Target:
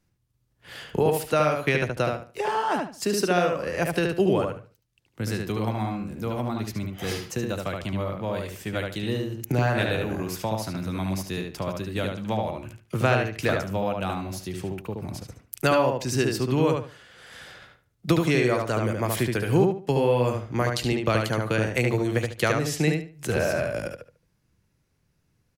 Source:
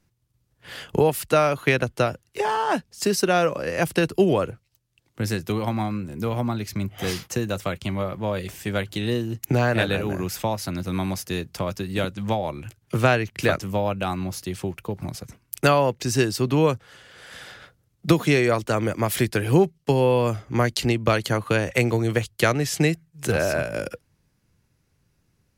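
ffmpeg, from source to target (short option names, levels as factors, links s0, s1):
-filter_complex "[0:a]asplit=2[s0][s1];[s1]adelay=73,lowpass=f=3700:p=1,volume=0.708,asplit=2[s2][s3];[s3]adelay=73,lowpass=f=3700:p=1,volume=0.26,asplit=2[s4][s5];[s5]adelay=73,lowpass=f=3700:p=1,volume=0.26,asplit=2[s6][s7];[s7]adelay=73,lowpass=f=3700:p=1,volume=0.26[s8];[s0][s2][s4][s6][s8]amix=inputs=5:normalize=0,volume=0.631"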